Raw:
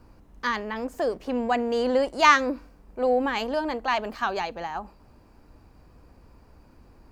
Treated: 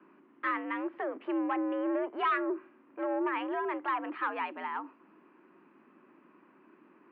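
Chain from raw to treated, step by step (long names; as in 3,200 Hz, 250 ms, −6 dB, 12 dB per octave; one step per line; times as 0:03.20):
treble cut that deepens with the level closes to 1,300 Hz, closed at −20.5 dBFS
flat-topped bell 510 Hz −9.5 dB 1.3 octaves
soft clipping −25 dBFS, distortion −8 dB
single-sideband voice off tune +80 Hz 150–2,700 Hz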